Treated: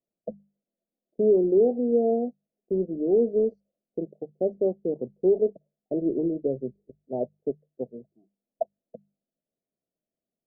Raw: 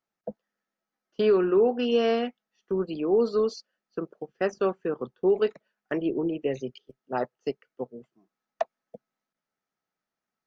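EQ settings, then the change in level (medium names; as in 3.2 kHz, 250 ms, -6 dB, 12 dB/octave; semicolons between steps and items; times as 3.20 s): elliptic low-pass 650 Hz, stop band 50 dB; hum notches 50/100/150/200 Hz; +2.0 dB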